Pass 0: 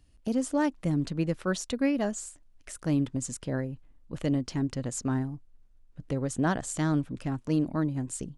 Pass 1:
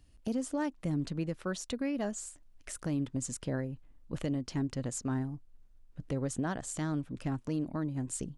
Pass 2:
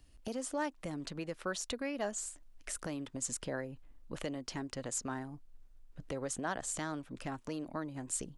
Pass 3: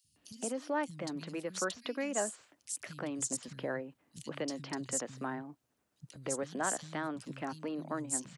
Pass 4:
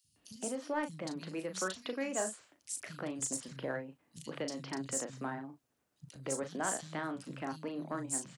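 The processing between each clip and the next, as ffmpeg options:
-af "alimiter=limit=-24dB:level=0:latency=1:release=440"
-filter_complex "[0:a]equalizer=f=120:t=o:w=2.1:g=-5.5,acrossover=split=440|2600[a][b][c];[a]acompressor=threshold=-44dB:ratio=6[d];[d][b][c]amix=inputs=3:normalize=0,volume=2dB"
-filter_complex "[0:a]highpass=f=120:w=0.5412,highpass=f=120:w=1.3066,acrossover=split=170|3700[a][b][c];[a]adelay=40[d];[b]adelay=160[e];[d][e][c]amix=inputs=3:normalize=0,volume=2.5dB"
-filter_complex "[0:a]asplit=2[a][b];[b]asoftclip=type=hard:threshold=-29dB,volume=-7dB[c];[a][c]amix=inputs=2:normalize=0,asplit=2[d][e];[e]adelay=37,volume=-8dB[f];[d][f]amix=inputs=2:normalize=0,volume=-4.5dB"

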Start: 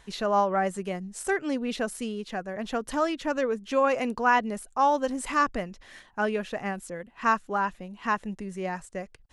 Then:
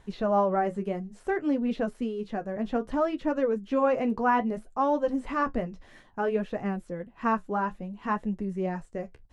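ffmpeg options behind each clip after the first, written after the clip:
-filter_complex "[0:a]acrossover=split=4300[a][b];[b]acompressor=threshold=-54dB:ratio=4:attack=1:release=60[c];[a][c]amix=inputs=2:normalize=0,tiltshelf=f=970:g=6.5,flanger=delay=9.3:depth=4.9:regen=-46:speed=0.6:shape=triangular,volume=1.5dB"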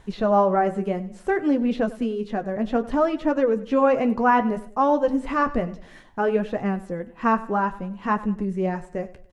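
-af "aecho=1:1:97|194|291:0.133|0.0533|0.0213,volume=5.5dB"

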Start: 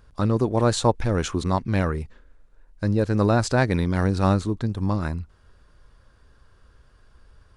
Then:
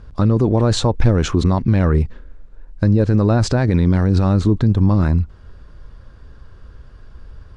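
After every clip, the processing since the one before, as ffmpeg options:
-af "lowpass=6.3k,lowshelf=f=450:g=8.5,alimiter=limit=-12dB:level=0:latency=1:release=40,volume=6.5dB"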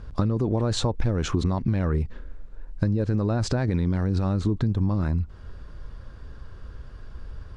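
-af "acompressor=threshold=-20dB:ratio=6"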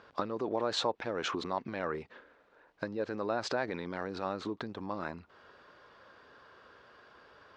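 -af "highpass=530,lowpass=4.1k"

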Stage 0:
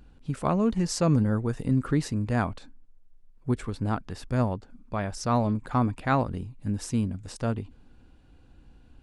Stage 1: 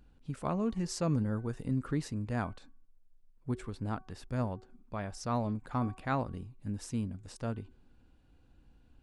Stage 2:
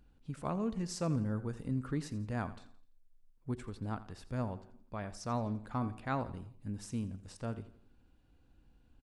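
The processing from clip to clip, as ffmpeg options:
-af "bandreject=f=375.1:t=h:w=4,bandreject=f=750.2:t=h:w=4,bandreject=f=1.1253k:t=h:w=4,bandreject=f=1.5004k:t=h:w=4,volume=-8dB"
-af "aecho=1:1:85|170|255|340:0.158|0.0666|0.028|0.0117,volume=-3dB"

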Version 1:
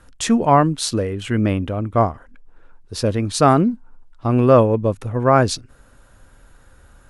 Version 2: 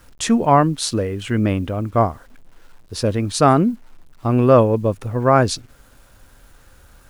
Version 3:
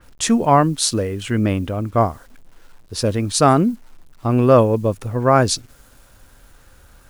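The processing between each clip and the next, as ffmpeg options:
-af "acrusher=bits=8:mix=0:aa=0.000001"
-af "adynamicequalizer=threshold=0.0178:dfrequency=4100:dqfactor=0.7:tfrequency=4100:tqfactor=0.7:attack=5:release=100:ratio=0.375:range=3:mode=boostabove:tftype=highshelf"

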